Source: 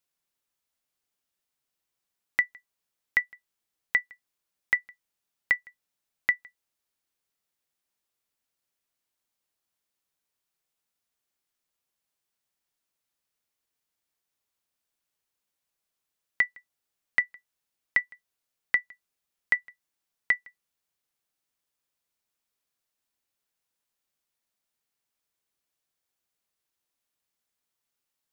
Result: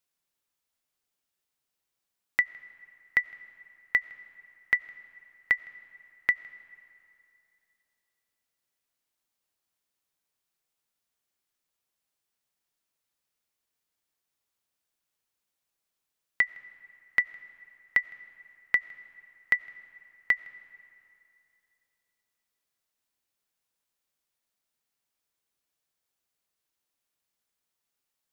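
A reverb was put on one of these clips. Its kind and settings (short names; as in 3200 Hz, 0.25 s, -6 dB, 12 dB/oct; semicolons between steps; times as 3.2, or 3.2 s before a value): digital reverb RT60 2.8 s, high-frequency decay 0.7×, pre-delay 50 ms, DRR 18.5 dB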